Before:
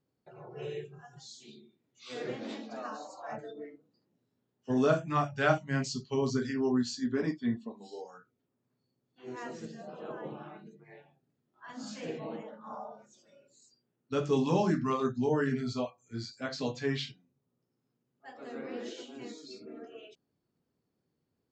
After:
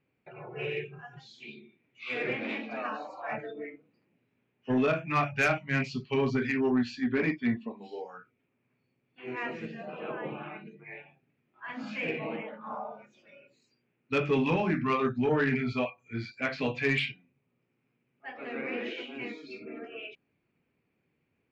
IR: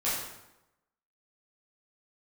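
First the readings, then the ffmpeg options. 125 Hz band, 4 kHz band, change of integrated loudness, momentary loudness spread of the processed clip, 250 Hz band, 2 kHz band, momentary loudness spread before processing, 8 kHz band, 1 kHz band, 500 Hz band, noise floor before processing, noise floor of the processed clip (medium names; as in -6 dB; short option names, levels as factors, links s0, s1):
+1.0 dB, +1.5 dB, +2.0 dB, 19 LU, +2.0 dB, +8.0 dB, 21 LU, no reading, +2.0 dB, +1.5 dB, -82 dBFS, -78 dBFS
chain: -af "alimiter=limit=0.106:level=0:latency=1:release=445,lowpass=f=2400:t=q:w=6.8,asoftclip=type=tanh:threshold=0.0841,volume=1.5"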